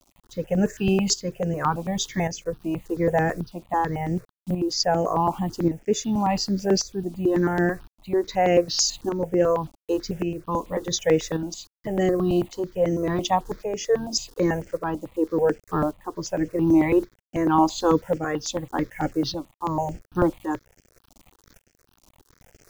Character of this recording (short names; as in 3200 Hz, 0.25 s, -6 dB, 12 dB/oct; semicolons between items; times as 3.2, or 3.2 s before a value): a quantiser's noise floor 8-bit, dither none; tremolo saw up 0.88 Hz, depth 60%; notches that jump at a steady rate 9.1 Hz 460–3800 Hz